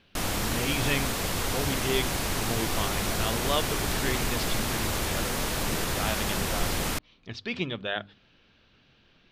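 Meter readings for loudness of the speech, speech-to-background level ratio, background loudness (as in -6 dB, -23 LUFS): -33.5 LUFS, -5.0 dB, -28.5 LUFS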